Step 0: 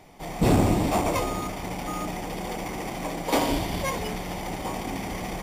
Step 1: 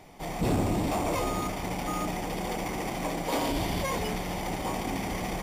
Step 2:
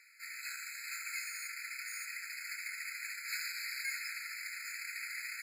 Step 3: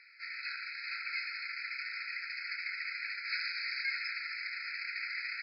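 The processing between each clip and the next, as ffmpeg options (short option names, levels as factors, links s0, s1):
-af "alimiter=limit=0.0944:level=0:latency=1:release=14"
-af "afftfilt=real='re*eq(mod(floor(b*sr/1024/1300),2),1)':imag='im*eq(mod(floor(b*sr/1024/1300),2),1)':win_size=1024:overlap=0.75"
-af "volume=1.68" -ar 12000 -c:a libmp3lame -b:a 64k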